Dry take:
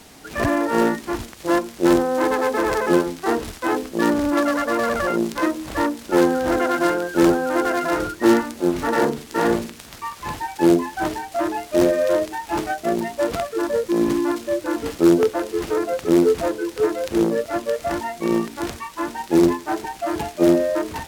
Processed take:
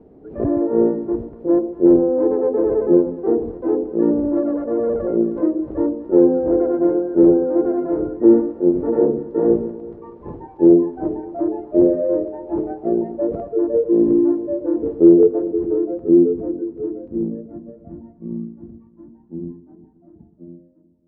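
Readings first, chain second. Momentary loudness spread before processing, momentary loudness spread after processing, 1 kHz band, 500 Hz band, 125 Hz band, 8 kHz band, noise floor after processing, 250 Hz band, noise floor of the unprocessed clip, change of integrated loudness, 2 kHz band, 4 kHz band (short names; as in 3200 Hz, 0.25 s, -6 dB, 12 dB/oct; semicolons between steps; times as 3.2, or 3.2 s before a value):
9 LU, 16 LU, -11.5 dB, +3.0 dB, -0.5 dB, under -40 dB, -50 dBFS, +3.5 dB, -42 dBFS, +3.0 dB, under -20 dB, under -35 dB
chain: ending faded out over 5.93 s; echo with dull and thin repeats by turns 0.122 s, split 830 Hz, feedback 67%, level -11.5 dB; low-pass sweep 430 Hz -> 210 Hz, 15.07–18.12; gain -1.5 dB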